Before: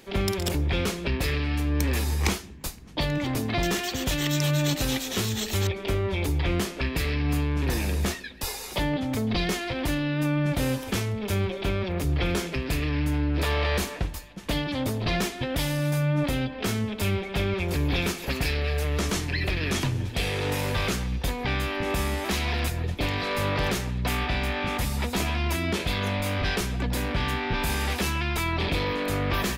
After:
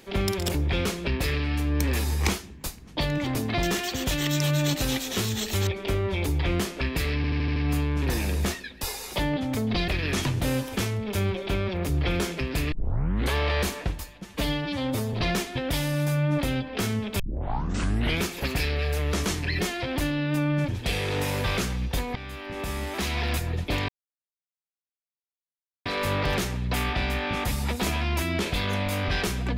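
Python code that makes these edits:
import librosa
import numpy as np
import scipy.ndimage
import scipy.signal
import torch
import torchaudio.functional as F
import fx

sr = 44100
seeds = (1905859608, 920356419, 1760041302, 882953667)

y = fx.edit(x, sr, fx.stutter(start_s=7.16, slice_s=0.08, count=6),
    fx.swap(start_s=9.48, length_s=1.08, other_s=19.46, other_length_s=0.53),
    fx.tape_start(start_s=12.87, length_s=0.62),
    fx.stretch_span(start_s=14.4, length_s=0.59, factor=1.5),
    fx.tape_start(start_s=17.05, length_s=1.02),
    fx.fade_in_from(start_s=21.46, length_s=1.14, floor_db=-14.0),
    fx.insert_silence(at_s=23.19, length_s=1.97), tone=tone)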